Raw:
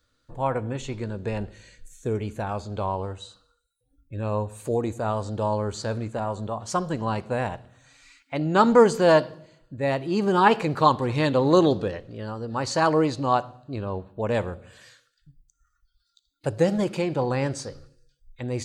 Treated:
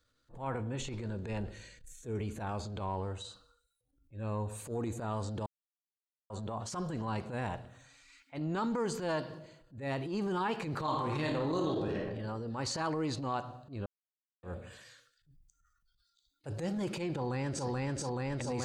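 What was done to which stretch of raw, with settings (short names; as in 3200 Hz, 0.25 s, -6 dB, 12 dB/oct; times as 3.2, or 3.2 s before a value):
5.46–6.3 mute
10.82–12.18 reverb throw, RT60 0.83 s, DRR 0 dB
13.86–14.43 mute
17.13–17.66 echo throw 0.43 s, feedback 75%, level 0 dB
whole clip: dynamic EQ 570 Hz, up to -5 dB, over -32 dBFS, Q 2.4; compressor 5:1, threshold -24 dBFS; transient shaper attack -12 dB, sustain +5 dB; gain -5.5 dB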